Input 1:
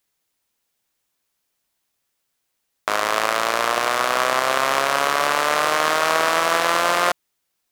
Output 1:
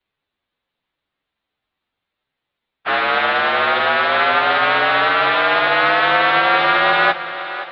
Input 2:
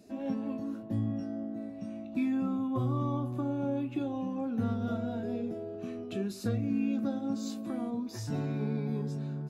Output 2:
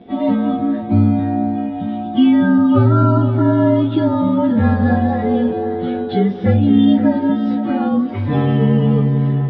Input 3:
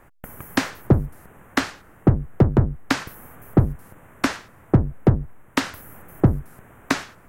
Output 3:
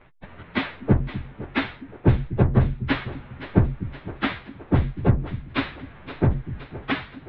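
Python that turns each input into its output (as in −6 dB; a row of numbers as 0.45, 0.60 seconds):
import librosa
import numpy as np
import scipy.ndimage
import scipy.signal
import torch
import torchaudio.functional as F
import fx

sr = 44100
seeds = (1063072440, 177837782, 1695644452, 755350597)

y = fx.partial_stretch(x, sr, pct=111)
y = scipy.signal.sosfilt(scipy.signal.ellip(4, 1.0, 50, 3800.0, 'lowpass', fs=sr, output='sos'), y)
y = fx.echo_split(y, sr, split_hz=310.0, low_ms=246, high_ms=519, feedback_pct=52, wet_db=-13)
y = librosa.util.normalize(y) * 10.0 ** (-2 / 20.0)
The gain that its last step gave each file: +7.0, +20.0, +3.5 decibels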